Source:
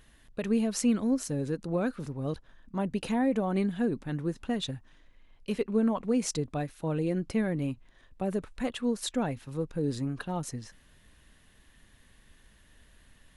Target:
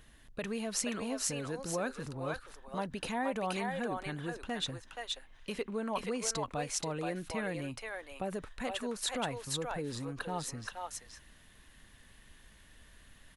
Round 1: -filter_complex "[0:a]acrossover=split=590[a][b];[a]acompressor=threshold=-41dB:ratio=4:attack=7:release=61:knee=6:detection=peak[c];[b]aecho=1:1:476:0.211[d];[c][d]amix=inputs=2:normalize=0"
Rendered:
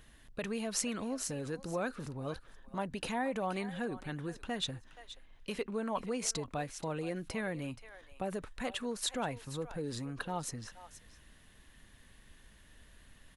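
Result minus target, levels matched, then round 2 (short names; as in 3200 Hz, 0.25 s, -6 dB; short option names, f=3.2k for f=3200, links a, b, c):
echo-to-direct -12 dB
-filter_complex "[0:a]acrossover=split=590[a][b];[a]acompressor=threshold=-41dB:ratio=4:attack=7:release=61:knee=6:detection=peak[c];[b]aecho=1:1:476:0.841[d];[c][d]amix=inputs=2:normalize=0"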